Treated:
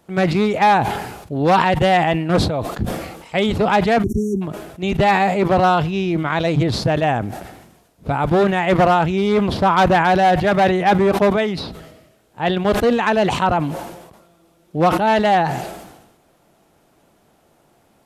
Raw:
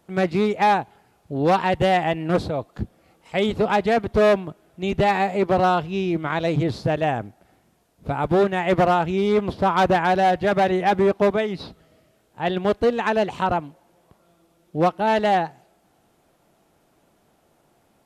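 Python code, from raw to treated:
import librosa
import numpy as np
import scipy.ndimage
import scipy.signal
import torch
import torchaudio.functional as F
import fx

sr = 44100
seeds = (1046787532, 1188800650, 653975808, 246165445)

y = fx.spec_erase(x, sr, start_s=4.04, length_s=0.38, low_hz=420.0, high_hz=5500.0)
y = fx.dynamic_eq(y, sr, hz=410.0, q=1.4, threshold_db=-31.0, ratio=4.0, max_db=-3)
y = fx.sustainer(y, sr, db_per_s=54.0)
y = y * librosa.db_to_amplitude(4.5)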